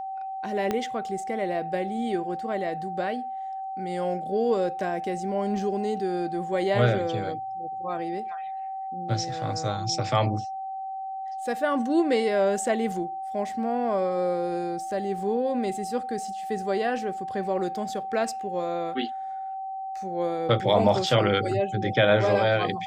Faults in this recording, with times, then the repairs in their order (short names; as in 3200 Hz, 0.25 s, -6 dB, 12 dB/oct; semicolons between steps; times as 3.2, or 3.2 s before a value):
tone 770 Hz -31 dBFS
0.71 pop -13 dBFS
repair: de-click; notch 770 Hz, Q 30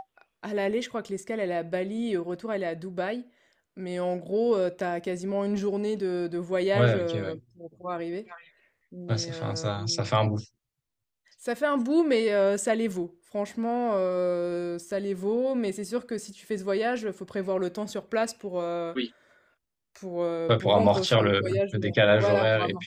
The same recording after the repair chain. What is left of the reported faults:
0.71 pop